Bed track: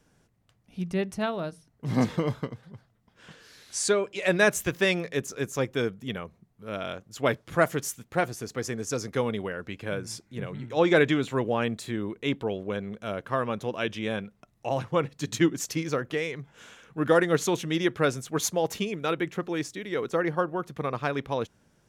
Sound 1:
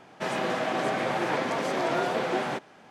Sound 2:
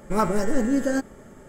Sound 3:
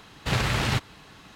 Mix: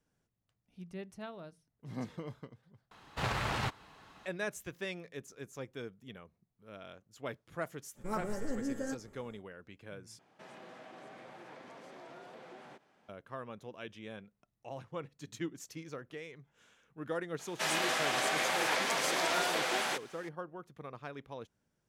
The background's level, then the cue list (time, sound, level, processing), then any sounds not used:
bed track -16 dB
2.91 replace with 3 -12 dB + bell 920 Hz +8 dB 1.9 oct
7.94 add 2 -14.5 dB, fades 0.05 s
10.19 replace with 1 -16 dB + compressor 2:1, threshold -38 dBFS
17.39 add 1 -4 dB + tilt +4.5 dB/oct

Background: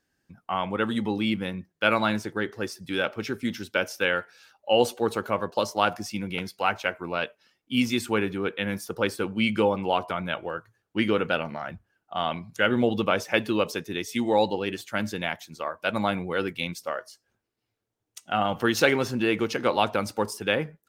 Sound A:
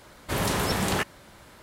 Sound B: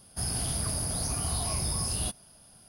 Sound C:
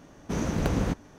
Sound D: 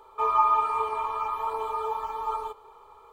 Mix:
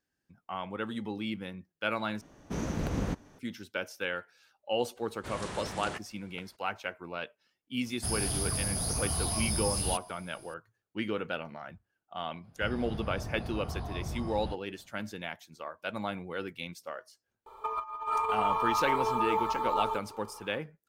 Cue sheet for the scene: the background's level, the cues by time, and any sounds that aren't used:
background -9.5 dB
2.21 replace with C -5 dB + limiter -15 dBFS
4.95 add A -13.5 dB, fades 0.02 s + downsampling 22050 Hz
7.86 add B -1 dB
12.44 add B -4 dB + LPF 1700 Hz
17.46 add D -1 dB + negative-ratio compressor -28 dBFS, ratio -0.5

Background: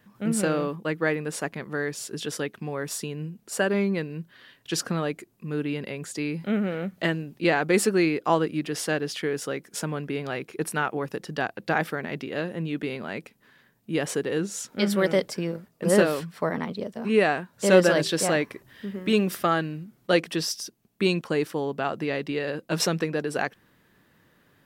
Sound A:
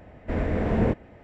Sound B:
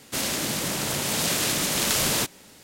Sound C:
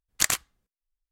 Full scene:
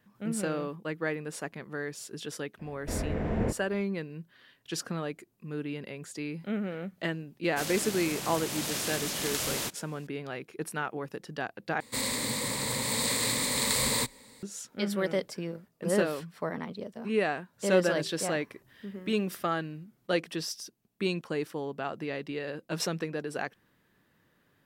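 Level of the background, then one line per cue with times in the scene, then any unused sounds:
background -7 dB
2.59 add A -6.5 dB
7.44 add B -9 dB
11.8 replace with B -6 dB + ripple EQ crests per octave 0.98, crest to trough 12 dB
not used: C

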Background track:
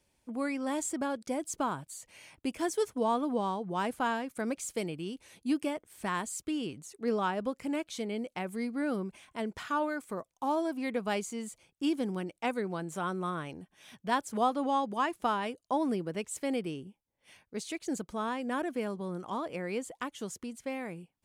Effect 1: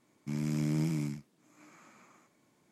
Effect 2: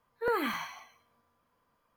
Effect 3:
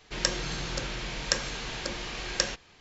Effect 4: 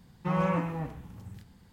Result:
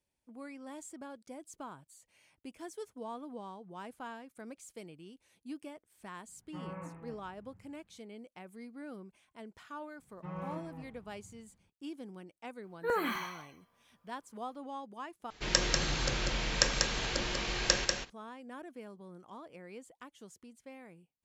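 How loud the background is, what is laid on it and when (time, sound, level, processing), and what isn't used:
background track -13.5 dB
6.28 add 4 -16.5 dB + LPF 2400 Hz 24 dB/oct
9.98 add 4 -14 dB + LPF 2200 Hz 6 dB/oct
12.62 add 2 -2 dB
15.3 replace with 3 -0.5 dB + echo 0.192 s -4 dB
not used: 1

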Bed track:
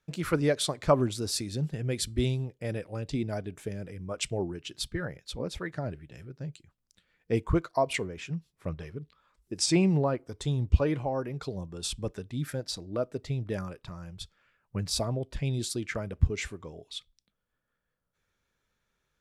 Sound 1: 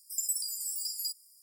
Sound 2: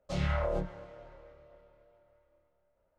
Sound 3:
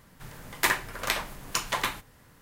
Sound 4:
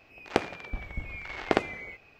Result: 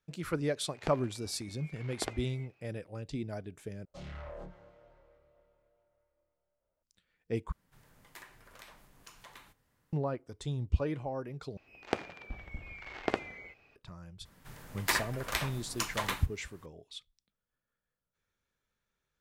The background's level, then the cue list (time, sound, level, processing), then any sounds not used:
bed track -6.5 dB
0.51 add 4 -14 dB + HPF 140 Hz
3.85 replace with 2 -10 dB + soft clip -29.5 dBFS
7.52 replace with 3 -18 dB + compressor 2:1, threshold -35 dBFS
11.57 replace with 4 -7 dB
14.25 add 3 -5.5 dB
not used: 1

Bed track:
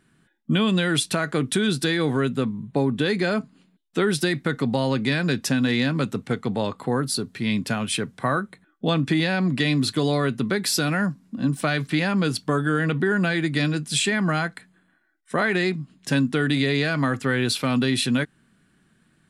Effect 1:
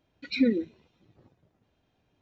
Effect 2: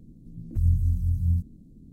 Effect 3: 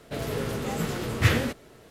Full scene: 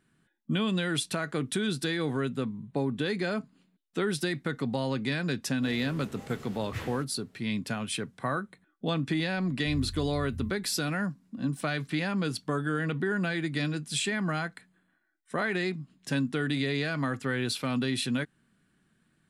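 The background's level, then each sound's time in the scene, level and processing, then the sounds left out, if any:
bed track -7.5 dB
5.51 add 3 -16 dB
9.11 add 2 -15 dB
not used: 1

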